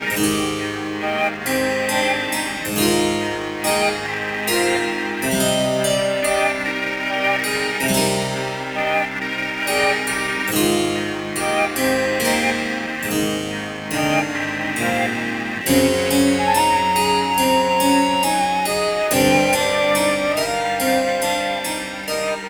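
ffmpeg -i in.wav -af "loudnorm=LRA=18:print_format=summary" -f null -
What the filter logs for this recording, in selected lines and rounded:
Input Integrated:    -19.0 LUFS
Input True Peak:      -3.3 dBTP
Input LRA:             3.3 LU
Input Threshold:     -29.0 LUFS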